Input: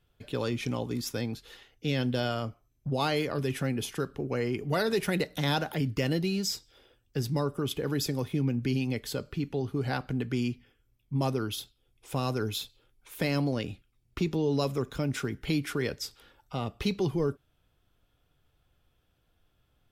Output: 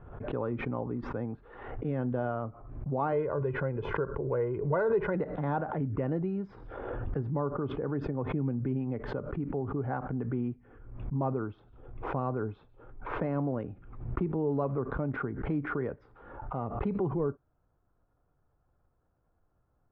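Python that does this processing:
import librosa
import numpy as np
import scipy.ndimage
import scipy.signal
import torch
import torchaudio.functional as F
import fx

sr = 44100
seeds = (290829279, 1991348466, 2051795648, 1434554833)

y = fx.comb(x, sr, ms=2.0, depth=0.65, at=(3.12, 5.15))
y = fx.pre_swell(y, sr, db_per_s=24.0, at=(6.46, 7.21))
y = scipy.signal.sosfilt(scipy.signal.butter(4, 1200.0, 'lowpass', fs=sr, output='sos'), y)
y = fx.tilt_shelf(y, sr, db=-3.5, hz=810.0)
y = fx.pre_swell(y, sr, db_per_s=58.0)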